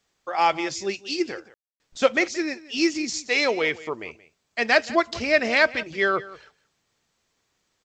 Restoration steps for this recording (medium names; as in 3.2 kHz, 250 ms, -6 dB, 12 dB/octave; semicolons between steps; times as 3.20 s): room tone fill 1.54–1.80 s; inverse comb 176 ms -18.5 dB